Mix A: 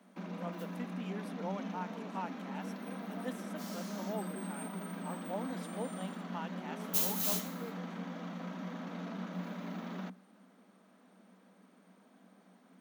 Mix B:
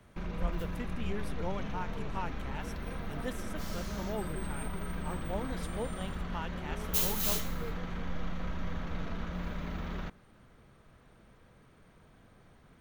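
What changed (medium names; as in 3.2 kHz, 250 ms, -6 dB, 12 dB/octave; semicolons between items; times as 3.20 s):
background: add tone controls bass -10 dB, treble -5 dB; master: remove rippled Chebyshev high-pass 180 Hz, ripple 6 dB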